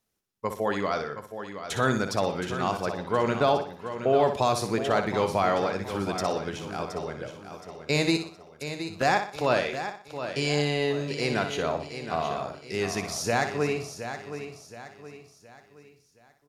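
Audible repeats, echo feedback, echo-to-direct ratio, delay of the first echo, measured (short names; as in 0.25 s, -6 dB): 12, no steady repeat, -5.0 dB, 61 ms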